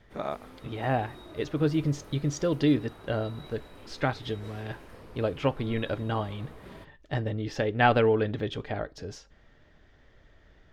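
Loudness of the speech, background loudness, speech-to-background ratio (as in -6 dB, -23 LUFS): -29.5 LUFS, -49.0 LUFS, 19.5 dB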